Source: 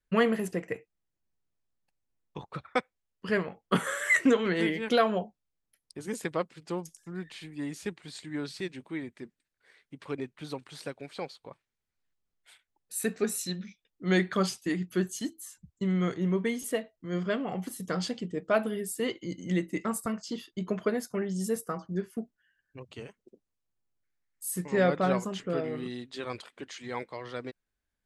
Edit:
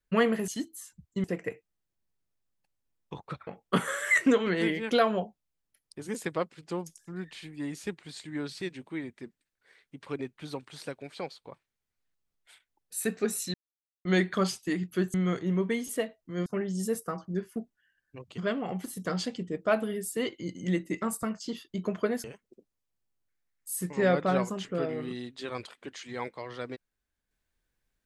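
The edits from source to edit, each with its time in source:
2.71–3.46 cut
13.53–14.04 mute
15.13–15.89 move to 0.48
21.07–22.99 move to 17.21

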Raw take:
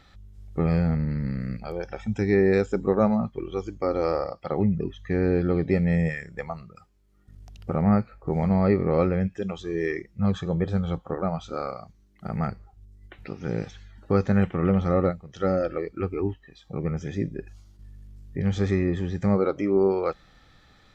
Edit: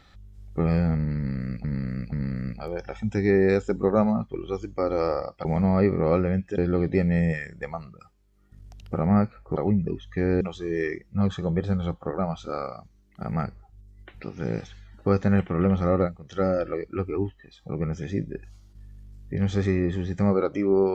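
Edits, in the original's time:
1.16–1.64 loop, 3 plays
4.49–5.34 swap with 8.32–9.45

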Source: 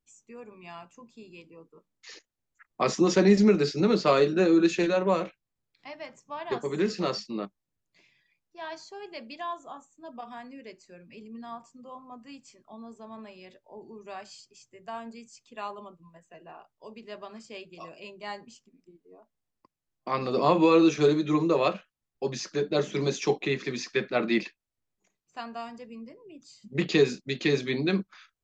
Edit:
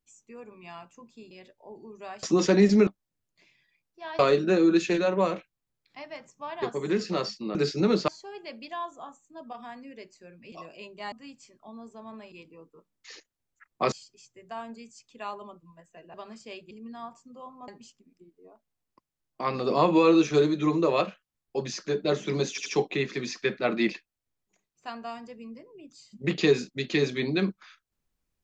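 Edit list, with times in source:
1.31–2.91 swap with 13.37–14.29
3.55–4.08 swap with 7.44–8.76
11.2–12.17 swap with 17.75–18.35
16.51–17.18 cut
23.17 stutter 0.08 s, 3 plays

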